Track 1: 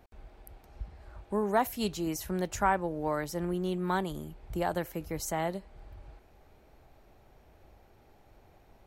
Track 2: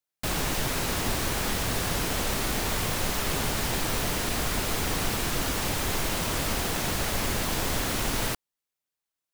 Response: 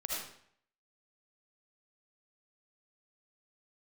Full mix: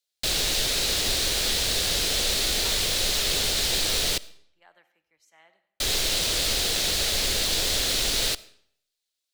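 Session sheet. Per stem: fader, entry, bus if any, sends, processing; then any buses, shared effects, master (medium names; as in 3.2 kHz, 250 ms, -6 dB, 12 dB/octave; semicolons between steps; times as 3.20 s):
-17.5 dB, 0.00 s, send -12.5 dB, band-pass filter 2.5 kHz, Q 1.5; three bands expanded up and down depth 70%
-0.5 dB, 0.00 s, muted 4.18–5.80 s, send -22 dB, graphic EQ 125/250/500/1000/4000/8000 Hz -8/-6/+4/-9/+12/+4 dB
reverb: on, RT60 0.65 s, pre-delay 35 ms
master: none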